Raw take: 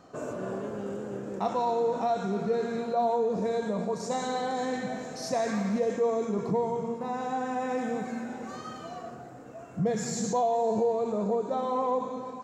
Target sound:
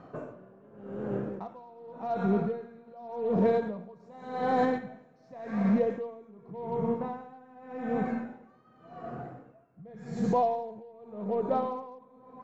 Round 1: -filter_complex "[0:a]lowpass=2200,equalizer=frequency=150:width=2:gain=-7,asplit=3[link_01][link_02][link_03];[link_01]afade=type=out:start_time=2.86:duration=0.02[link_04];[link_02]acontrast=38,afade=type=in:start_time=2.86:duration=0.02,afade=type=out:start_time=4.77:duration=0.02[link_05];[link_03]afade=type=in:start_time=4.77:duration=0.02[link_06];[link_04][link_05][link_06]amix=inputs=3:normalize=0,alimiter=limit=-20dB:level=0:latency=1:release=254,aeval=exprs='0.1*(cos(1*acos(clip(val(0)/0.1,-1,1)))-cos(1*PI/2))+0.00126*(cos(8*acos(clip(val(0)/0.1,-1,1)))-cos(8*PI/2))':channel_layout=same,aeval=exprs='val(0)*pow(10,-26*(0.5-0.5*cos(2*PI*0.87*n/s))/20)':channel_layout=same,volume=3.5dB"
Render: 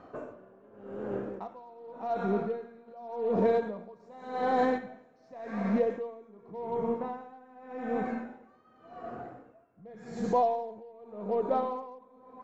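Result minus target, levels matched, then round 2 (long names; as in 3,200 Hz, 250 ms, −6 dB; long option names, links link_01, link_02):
125 Hz band −5.0 dB
-filter_complex "[0:a]lowpass=2200,equalizer=frequency=150:width=2:gain=5,asplit=3[link_01][link_02][link_03];[link_01]afade=type=out:start_time=2.86:duration=0.02[link_04];[link_02]acontrast=38,afade=type=in:start_time=2.86:duration=0.02,afade=type=out:start_time=4.77:duration=0.02[link_05];[link_03]afade=type=in:start_time=4.77:duration=0.02[link_06];[link_04][link_05][link_06]amix=inputs=3:normalize=0,alimiter=limit=-20dB:level=0:latency=1:release=254,aeval=exprs='0.1*(cos(1*acos(clip(val(0)/0.1,-1,1)))-cos(1*PI/2))+0.00126*(cos(8*acos(clip(val(0)/0.1,-1,1)))-cos(8*PI/2))':channel_layout=same,aeval=exprs='val(0)*pow(10,-26*(0.5-0.5*cos(2*PI*0.87*n/s))/20)':channel_layout=same,volume=3.5dB"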